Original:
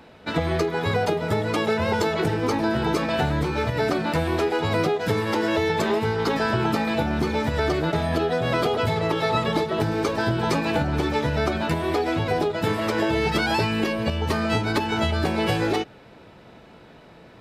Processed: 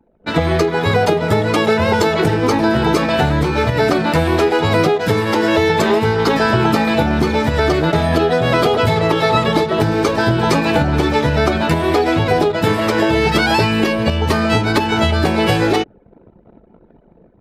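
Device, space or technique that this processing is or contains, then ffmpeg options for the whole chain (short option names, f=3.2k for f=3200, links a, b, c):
voice memo with heavy noise removal: -af "anlmdn=0.251,dynaudnorm=f=100:g=5:m=7.5dB,volume=1.5dB"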